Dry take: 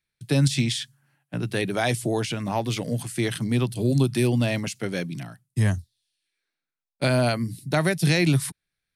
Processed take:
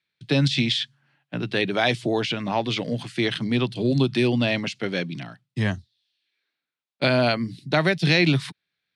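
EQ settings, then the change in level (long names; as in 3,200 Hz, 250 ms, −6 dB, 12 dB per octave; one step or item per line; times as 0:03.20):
high-pass filter 150 Hz 12 dB per octave
low-pass with resonance 3,700 Hz, resonance Q 1.6
+2.0 dB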